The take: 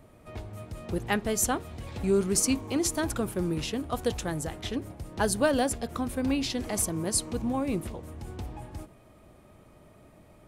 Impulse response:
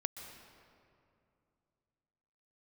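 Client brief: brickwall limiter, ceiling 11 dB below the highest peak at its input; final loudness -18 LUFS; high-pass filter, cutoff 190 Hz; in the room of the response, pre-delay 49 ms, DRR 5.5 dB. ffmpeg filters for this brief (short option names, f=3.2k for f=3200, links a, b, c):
-filter_complex "[0:a]highpass=190,alimiter=limit=-21dB:level=0:latency=1,asplit=2[a][b];[1:a]atrim=start_sample=2205,adelay=49[c];[b][c]afir=irnorm=-1:irlink=0,volume=-5.5dB[d];[a][d]amix=inputs=2:normalize=0,volume=13dB"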